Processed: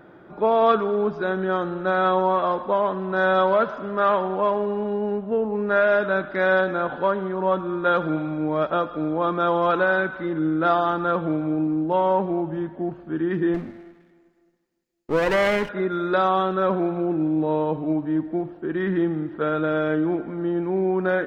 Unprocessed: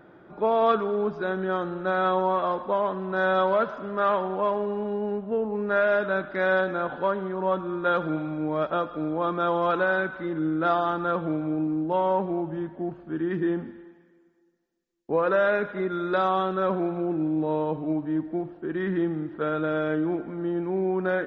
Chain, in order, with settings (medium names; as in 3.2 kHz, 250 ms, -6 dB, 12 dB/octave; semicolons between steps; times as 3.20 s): 13.54–15.69 s: comb filter that takes the minimum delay 0.43 ms; trim +3.5 dB